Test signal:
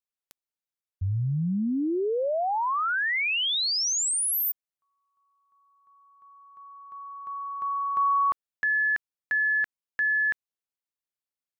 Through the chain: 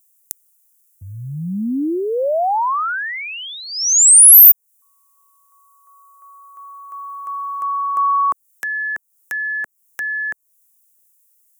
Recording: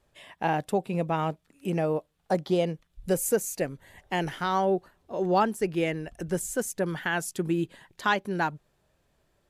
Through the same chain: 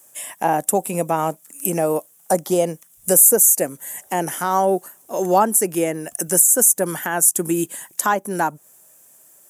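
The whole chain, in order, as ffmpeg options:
-filter_complex "[0:a]highpass=250,equalizer=f=410:t=o:w=0.52:g=-4,acrossover=split=1300[a][b];[b]acompressor=threshold=-42dB:ratio=4:attack=1.4:release=425:detection=peak[c];[a][c]amix=inputs=2:normalize=0,aexciter=amount=15.1:drive=5.2:freq=6.3k,apsyclip=11dB,volume=-1.5dB"

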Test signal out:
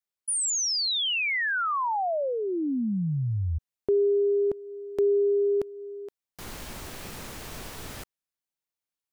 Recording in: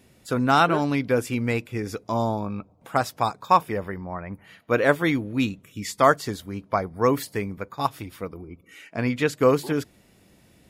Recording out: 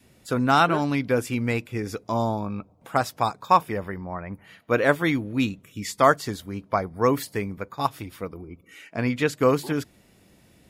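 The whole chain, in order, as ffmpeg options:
-af "adynamicequalizer=threshold=0.0224:dfrequency=460:dqfactor=2.2:tfrequency=460:tqfactor=2.2:attack=5:release=100:ratio=0.375:range=2.5:mode=cutabove:tftype=bell"

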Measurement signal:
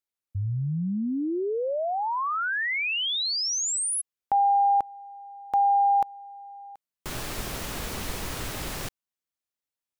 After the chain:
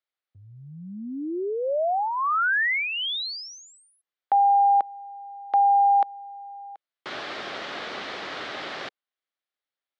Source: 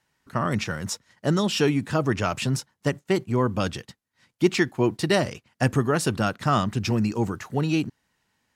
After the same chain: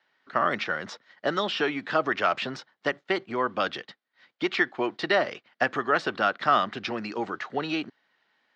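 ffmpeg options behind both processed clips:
-filter_complex "[0:a]acrossover=split=750|1900[a][b][c];[a]acompressor=threshold=-25dB:ratio=4[d];[b]acompressor=threshold=-23dB:ratio=4[e];[c]acompressor=threshold=-33dB:ratio=4[f];[d][e][f]amix=inputs=3:normalize=0,highpass=460,equalizer=f=470:t=q:w=4:g=-3,equalizer=f=950:t=q:w=4:g=-6,equalizer=f=2.6k:t=q:w=4:g=-5,lowpass=f=3.9k:w=0.5412,lowpass=f=3.9k:w=1.3066,volume=6dB"

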